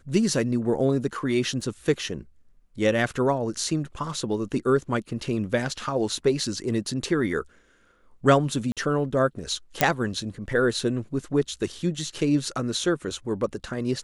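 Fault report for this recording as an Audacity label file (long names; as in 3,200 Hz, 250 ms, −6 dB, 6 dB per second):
1.610000	1.610000	drop-out 3.9 ms
8.720000	8.770000	drop-out 47 ms
9.810000	9.810000	click −2 dBFS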